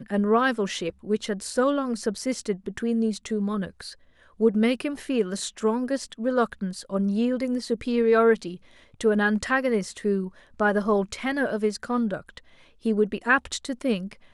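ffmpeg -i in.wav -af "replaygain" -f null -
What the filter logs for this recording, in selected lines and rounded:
track_gain = +4.9 dB
track_peak = 0.293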